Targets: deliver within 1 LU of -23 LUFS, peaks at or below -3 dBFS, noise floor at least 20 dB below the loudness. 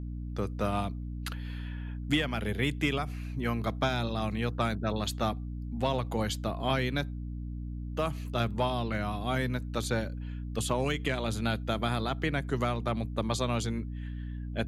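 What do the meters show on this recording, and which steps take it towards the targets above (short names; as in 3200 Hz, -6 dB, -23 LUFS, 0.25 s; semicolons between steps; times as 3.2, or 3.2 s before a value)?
hum 60 Hz; harmonics up to 300 Hz; hum level -35 dBFS; loudness -32.0 LUFS; peak -15.5 dBFS; loudness target -23.0 LUFS
-> de-hum 60 Hz, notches 5; gain +9 dB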